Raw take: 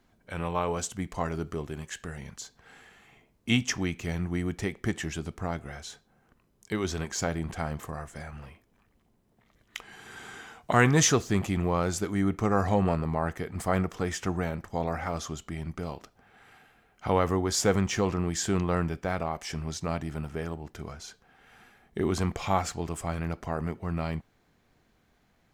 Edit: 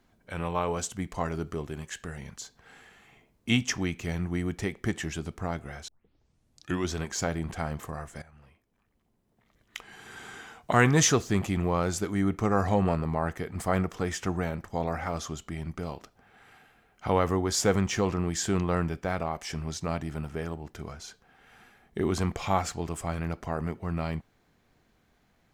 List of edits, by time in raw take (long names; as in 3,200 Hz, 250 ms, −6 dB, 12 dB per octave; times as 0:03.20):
0:05.88: tape start 1.01 s
0:08.22–0:10.02: fade in, from −15.5 dB